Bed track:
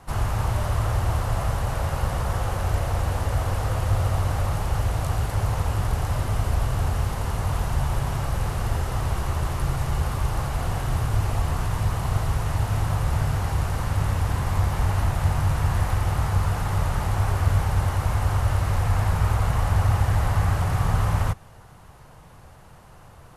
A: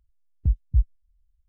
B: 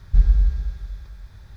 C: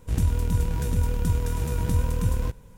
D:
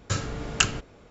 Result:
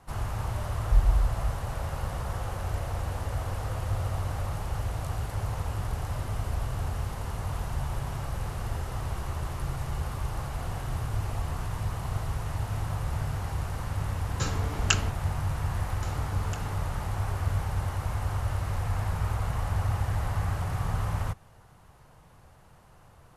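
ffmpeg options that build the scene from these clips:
-filter_complex "[4:a]asplit=2[a][b];[0:a]volume=-7.5dB[c];[b]acompressor=threshold=-35dB:ratio=6:attack=3.2:release=140:knee=1:detection=peak[d];[2:a]atrim=end=1.56,asetpts=PTS-STARTPTS,volume=-6.5dB,afade=t=in:d=0.004:c=hsin,afade=t=out:st=1.556:d=0.004:c=hsin,adelay=780[e];[a]atrim=end=1.1,asetpts=PTS-STARTPTS,volume=-3dB,afade=t=in:d=0.004:c=hsin,afade=t=out:st=1.096:d=0.004:c=hsin,adelay=14300[f];[d]atrim=end=1.1,asetpts=PTS-STARTPTS,volume=-4dB,afade=t=in:d=0.004:c=hsin,afade=t=out:st=1.096:d=0.004:c=hsin,adelay=15930[g];[c][e][f][g]amix=inputs=4:normalize=0"

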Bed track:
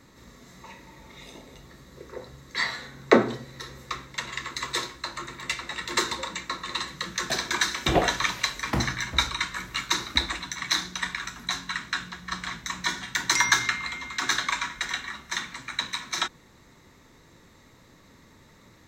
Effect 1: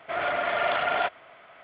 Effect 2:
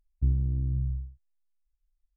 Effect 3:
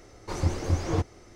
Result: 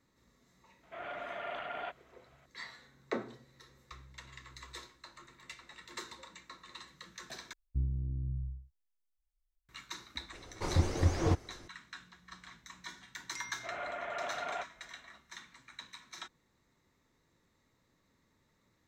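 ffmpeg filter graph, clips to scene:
-filter_complex "[1:a]asplit=2[a][b];[2:a]asplit=2[c][d];[0:a]volume=-19dB[e];[a]equalizer=f=250:t=o:w=1.3:g=4[f];[c]acompressor=threshold=-43dB:ratio=6:attack=3.2:release=140:knee=1:detection=peak[g];[b]lowpass=2.6k[h];[e]asplit=2[i][j];[i]atrim=end=7.534[k];[d]atrim=end=2.16,asetpts=PTS-STARTPTS,volume=-8dB[l];[j]atrim=start=9.686[m];[f]atrim=end=1.63,asetpts=PTS-STARTPTS,volume=-15.5dB,afade=t=in:d=0.004:c=hsin,afade=t=out:st=1.626:d=0.004:c=hsin,adelay=830[n];[g]atrim=end=2.16,asetpts=PTS-STARTPTS,volume=-13dB,afade=t=in:d=0.004:c=hsin,afade=t=out:st=2.156:d=0.004:c=hsin,adelay=3700[o];[3:a]atrim=end=1.35,asetpts=PTS-STARTPTS,volume=-2.5dB,afade=t=in:d=0.004:c=hsin,afade=t=out:st=1.346:d=0.004:c=hsin,adelay=10330[p];[h]atrim=end=1.63,asetpts=PTS-STARTPTS,volume=-13dB,afade=t=in:d=0.004:c=hsin,afade=t=out:st=1.626:d=0.004:c=hsin,adelay=13550[q];[k][l]acrossfade=d=0.004:c1=hsin:c2=hsin[r];[r][m]acrossfade=d=0.004:c1=hsin:c2=hsin[s];[s][n][o][p][q]amix=inputs=5:normalize=0"

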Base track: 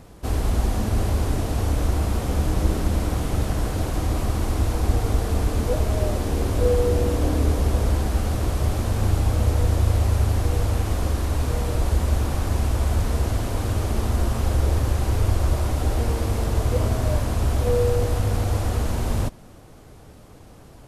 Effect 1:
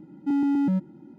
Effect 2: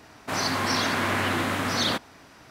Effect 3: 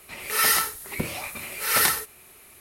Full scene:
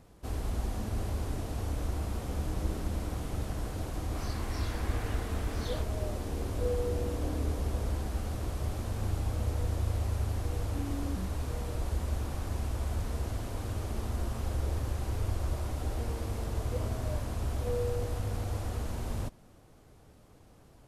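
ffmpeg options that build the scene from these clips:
-filter_complex "[0:a]volume=-11.5dB[a];[2:a]flanger=delay=22.5:depth=5:speed=1.7[b];[1:a]asoftclip=type=tanh:threshold=-23dB[c];[b]atrim=end=2.5,asetpts=PTS-STARTPTS,volume=-16.5dB,afade=t=in:d=0.004:c=hsin,afade=t=out:st=2.496:d=0.004:c=hsin,adelay=3840[d];[c]atrim=end=1.18,asetpts=PTS-STARTPTS,volume=-13dB,afade=t=in:d=0.004:c=hsin,afade=t=out:st=1.176:d=0.004:c=hsin,adelay=10480[e];[a][d][e]amix=inputs=3:normalize=0"

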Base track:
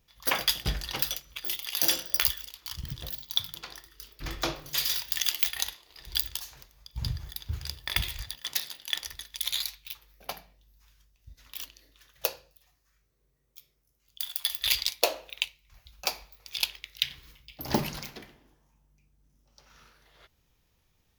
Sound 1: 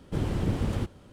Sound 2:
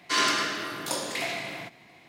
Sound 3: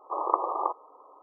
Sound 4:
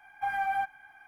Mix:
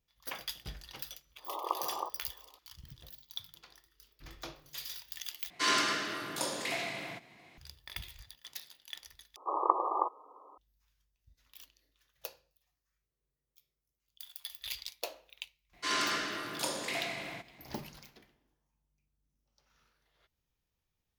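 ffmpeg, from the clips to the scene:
-filter_complex "[3:a]asplit=2[a][b];[2:a]asplit=2[c][d];[0:a]volume=-14.5dB[e];[b]equalizer=f=640:w=1.7:g=-4[f];[d]dynaudnorm=f=120:g=5:m=4dB[g];[e]asplit=3[h][i][j];[h]atrim=end=5.504[k];[c]atrim=end=2.08,asetpts=PTS-STARTPTS,volume=-4.5dB[l];[i]atrim=start=7.576:end=9.364[m];[f]atrim=end=1.22,asetpts=PTS-STARTPTS,volume=-1dB[n];[j]atrim=start=10.576[o];[a]atrim=end=1.22,asetpts=PTS-STARTPTS,volume=-9.5dB,afade=t=in:d=0.004:c=hsin,afade=t=out:st=1.216:d=0.004:c=hsin,adelay=1370[p];[g]atrim=end=2.08,asetpts=PTS-STARTPTS,volume=-9dB,afade=t=in:d=0.004:c=hsin,afade=t=out:st=2.076:d=0.004:c=hsin,adelay=15730[q];[k][l]acrossfade=d=0.004:c1=hsin:c2=hsin[r];[r][m]acrossfade=d=0.004:c1=hsin:c2=hsin[s];[s][n]acrossfade=d=0.004:c1=hsin:c2=hsin[t];[t][o]acrossfade=d=0.004:c1=hsin:c2=hsin[u];[u][p][q]amix=inputs=3:normalize=0"

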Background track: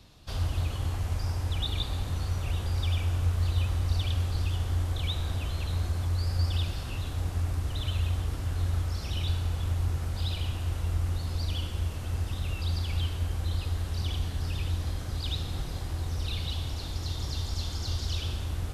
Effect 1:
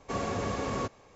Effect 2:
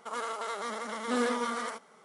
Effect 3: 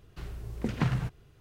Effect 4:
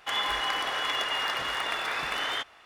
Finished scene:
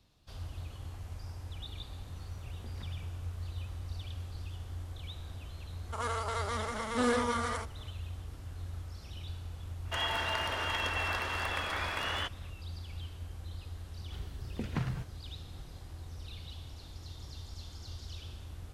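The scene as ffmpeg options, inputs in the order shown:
-filter_complex "[3:a]asplit=2[a][b];[0:a]volume=-13dB[c];[a]acompressor=threshold=-31dB:ratio=6:attack=3.2:release=140:knee=1:detection=peak[d];[4:a]afreqshift=-140[e];[d]atrim=end=1.4,asetpts=PTS-STARTPTS,volume=-16dB,afade=t=in:d=0.004:c=hsin,afade=t=out:st=1.396:d=0.004:c=hsin,adelay=2000[f];[2:a]atrim=end=2.04,asetpts=PTS-STARTPTS,afade=t=in:d=0.004:c=hsin,afade=t=out:st=2.036:d=0.004:c=hsin,adelay=5870[g];[e]atrim=end=2.65,asetpts=PTS-STARTPTS,volume=-4.5dB,afade=t=in:d=0.004:c=hsin,afade=t=out:st=2.646:d=0.004:c=hsin,adelay=9850[h];[b]atrim=end=1.4,asetpts=PTS-STARTPTS,volume=-6.5dB,afade=t=in:d=0.004:c=hsin,afade=t=out:st=1.396:d=0.004:c=hsin,adelay=13950[i];[c][f][g][h][i]amix=inputs=5:normalize=0"

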